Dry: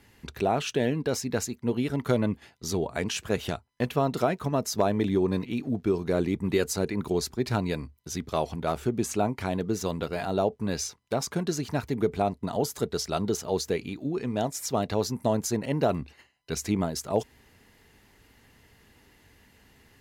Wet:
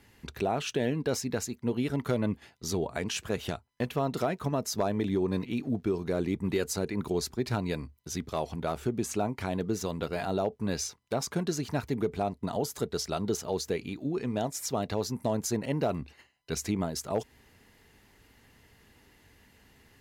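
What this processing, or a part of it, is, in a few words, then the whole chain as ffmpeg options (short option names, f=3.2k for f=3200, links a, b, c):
clipper into limiter: -af "asoftclip=type=hard:threshold=-14dB,alimiter=limit=-17dB:level=0:latency=1:release=181,volume=-1.5dB"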